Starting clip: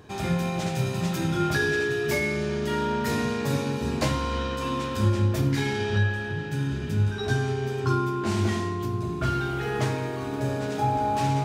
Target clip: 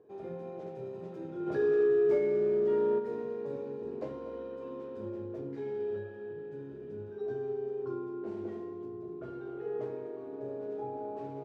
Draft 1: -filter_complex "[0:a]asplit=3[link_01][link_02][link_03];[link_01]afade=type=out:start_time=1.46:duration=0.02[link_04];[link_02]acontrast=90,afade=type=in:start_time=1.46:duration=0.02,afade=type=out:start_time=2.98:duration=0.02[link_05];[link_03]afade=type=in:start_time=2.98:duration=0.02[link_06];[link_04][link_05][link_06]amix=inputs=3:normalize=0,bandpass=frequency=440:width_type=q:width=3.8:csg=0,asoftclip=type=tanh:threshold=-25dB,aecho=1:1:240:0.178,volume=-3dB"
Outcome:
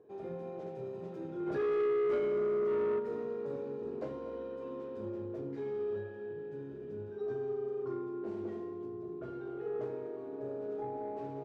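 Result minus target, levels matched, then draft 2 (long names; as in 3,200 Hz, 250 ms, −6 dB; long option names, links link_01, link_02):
soft clipping: distortion +17 dB
-filter_complex "[0:a]asplit=3[link_01][link_02][link_03];[link_01]afade=type=out:start_time=1.46:duration=0.02[link_04];[link_02]acontrast=90,afade=type=in:start_time=1.46:duration=0.02,afade=type=out:start_time=2.98:duration=0.02[link_05];[link_03]afade=type=in:start_time=2.98:duration=0.02[link_06];[link_04][link_05][link_06]amix=inputs=3:normalize=0,bandpass=frequency=440:width_type=q:width=3.8:csg=0,asoftclip=type=tanh:threshold=-13.5dB,aecho=1:1:240:0.178,volume=-3dB"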